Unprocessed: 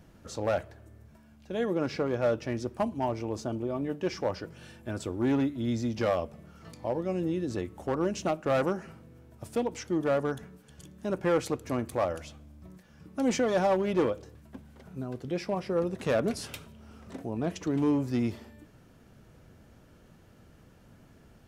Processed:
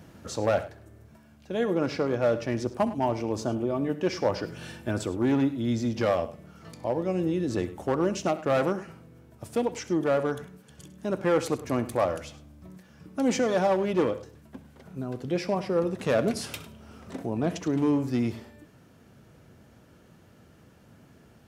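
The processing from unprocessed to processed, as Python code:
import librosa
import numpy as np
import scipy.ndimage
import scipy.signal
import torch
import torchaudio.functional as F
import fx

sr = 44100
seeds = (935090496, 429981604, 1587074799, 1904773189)

p1 = scipy.signal.sosfilt(scipy.signal.butter(2, 77.0, 'highpass', fs=sr, output='sos'), x)
p2 = fx.rider(p1, sr, range_db=10, speed_s=0.5)
p3 = p1 + (p2 * librosa.db_to_amplitude(-1.0))
p4 = fx.echo_multitap(p3, sr, ms=(66, 102), db=(-17.0, -16.5))
y = p4 * librosa.db_to_amplitude(-2.5)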